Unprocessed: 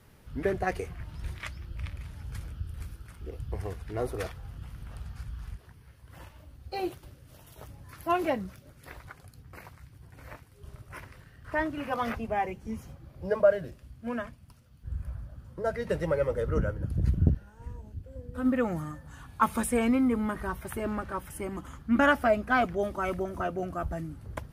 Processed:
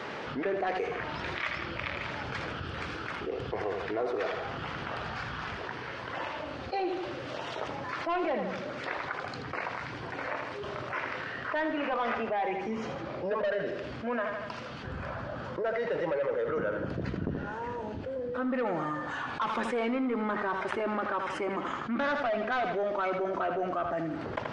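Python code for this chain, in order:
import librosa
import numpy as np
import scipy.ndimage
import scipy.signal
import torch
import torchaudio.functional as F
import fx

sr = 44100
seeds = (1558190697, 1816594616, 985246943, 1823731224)

y = scipy.signal.sosfilt(scipy.signal.butter(2, 400.0, 'highpass', fs=sr, output='sos'), x)
y = 10.0 ** (-27.0 / 20.0) * np.tanh(y / 10.0 ** (-27.0 / 20.0))
y = scipy.ndimage.gaussian_filter1d(y, 2.1, mode='constant')
y = fx.echo_feedback(y, sr, ms=80, feedback_pct=35, wet_db=-11)
y = fx.env_flatten(y, sr, amount_pct=70)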